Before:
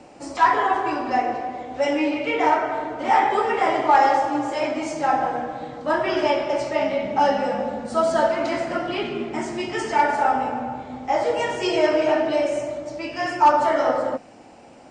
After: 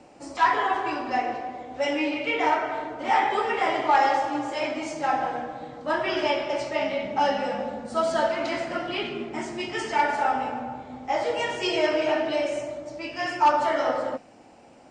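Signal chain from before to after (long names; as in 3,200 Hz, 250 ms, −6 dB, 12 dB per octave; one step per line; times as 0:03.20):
dynamic equaliser 3,200 Hz, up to +6 dB, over −38 dBFS, Q 0.74
level −5 dB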